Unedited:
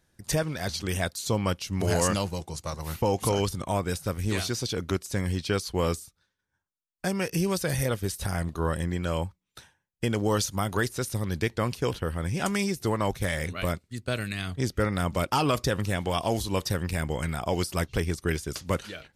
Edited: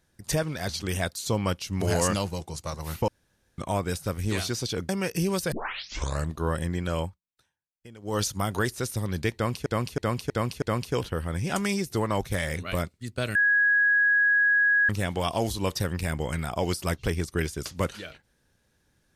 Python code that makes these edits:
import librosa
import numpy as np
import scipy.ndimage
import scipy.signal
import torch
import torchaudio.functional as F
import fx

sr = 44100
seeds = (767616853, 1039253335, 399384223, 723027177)

y = fx.edit(x, sr, fx.room_tone_fill(start_s=3.08, length_s=0.5),
    fx.cut(start_s=4.89, length_s=2.18),
    fx.tape_start(start_s=7.7, length_s=0.79),
    fx.fade_down_up(start_s=9.19, length_s=1.2, db=-20.0, fade_s=0.19),
    fx.repeat(start_s=11.52, length_s=0.32, count=5),
    fx.bleep(start_s=14.25, length_s=1.54, hz=1660.0, db=-18.0), tone=tone)